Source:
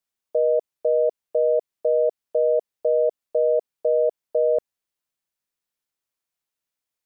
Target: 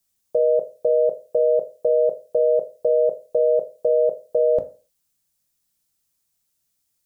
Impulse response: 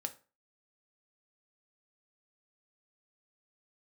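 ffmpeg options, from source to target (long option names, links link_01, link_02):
-filter_complex "[0:a]bass=frequency=250:gain=13,treble=frequency=4000:gain=12[link_01];[1:a]atrim=start_sample=2205[link_02];[link_01][link_02]afir=irnorm=-1:irlink=0,volume=4dB"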